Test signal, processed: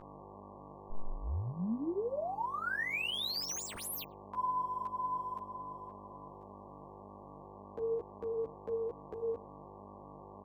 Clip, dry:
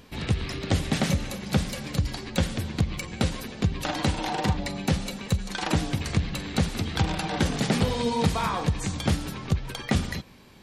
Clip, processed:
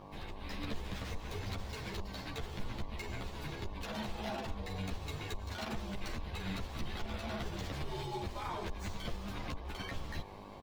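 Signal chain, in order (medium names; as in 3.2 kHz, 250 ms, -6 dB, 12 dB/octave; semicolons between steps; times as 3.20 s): median filter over 5 samples; speakerphone echo 100 ms, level -28 dB; compression 10:1, threshold -31 dBFS; frequency shift -100 Hz; peak limiter -27 dBFS; level rider gain up to 7 dB; mains buzz 50 Hz, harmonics 23, -41 dBFS -1 dB/octave; three-phase chorus; trim -7 dB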